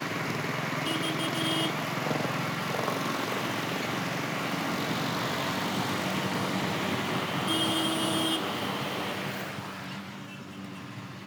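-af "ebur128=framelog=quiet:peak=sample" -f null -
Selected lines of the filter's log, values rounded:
Integrated loudness:
  I:         -29.7 LUFS
  Threshold: -40.0 LUFS
Loudness range:
  LRA:         1.9 LU
  Threshold: -49.6 LUFS
  LRA low:   -30.3 LUFS
  LRA high:  -28.4 LUFS
Sample peak:
  Peak:      -14.3 dBFS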